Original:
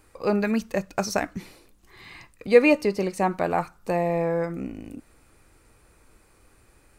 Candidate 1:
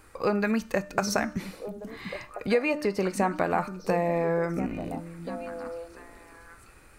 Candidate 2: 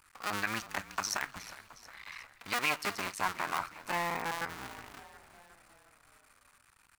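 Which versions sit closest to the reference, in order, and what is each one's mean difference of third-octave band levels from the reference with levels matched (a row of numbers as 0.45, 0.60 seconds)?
1, 2; 5.0, 13.0 decibels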